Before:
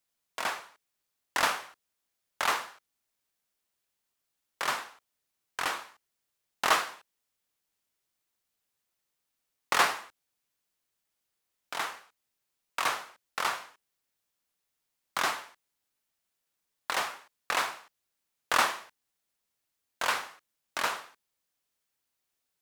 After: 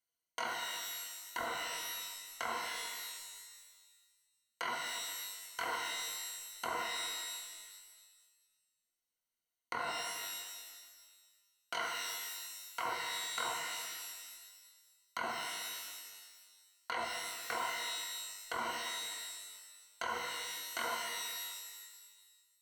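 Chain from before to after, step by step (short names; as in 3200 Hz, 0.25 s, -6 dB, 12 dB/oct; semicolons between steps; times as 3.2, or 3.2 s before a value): treble ducked by the level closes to 1100 Hz, closed at -26.5 dBFS; ripple EQ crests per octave 1.9, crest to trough 14 dB; level quantiser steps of 18 dB; reverb removal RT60 1.9 s; shimmer reverb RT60 1.5 s, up +12 st, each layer -2 dB, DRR 0.5 dB; gain -2.5 dB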